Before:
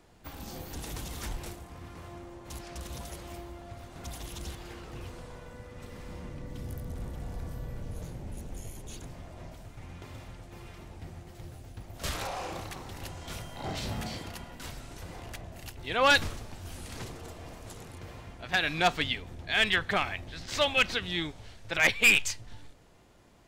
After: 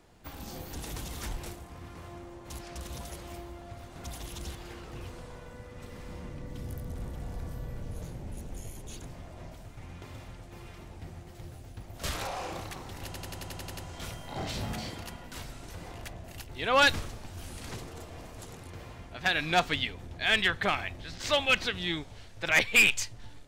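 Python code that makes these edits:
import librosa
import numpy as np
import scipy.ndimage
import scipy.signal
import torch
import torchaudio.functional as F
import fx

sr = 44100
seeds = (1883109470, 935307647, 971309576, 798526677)

y = fx.edit(x, sr, fx.stutter(start_s=13.05, slice_s=0.09, count=9), tone=tone)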